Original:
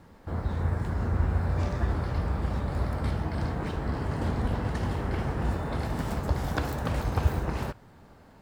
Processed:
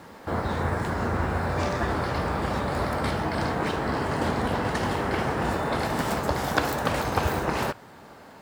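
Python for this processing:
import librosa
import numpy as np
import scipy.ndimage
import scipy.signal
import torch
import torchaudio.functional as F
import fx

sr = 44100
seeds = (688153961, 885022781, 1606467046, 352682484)

p1 = fx.highpass(x, sr, hz=400.0, slope=6)
p2 = fx.rider(p1, sr, range_db=4, speed_s=0.5)
p3 = p1 + (p2 * 10.0 ** (1.0 / 20.0))
y = p3 * 10.0 ** (3.5 / 20.0)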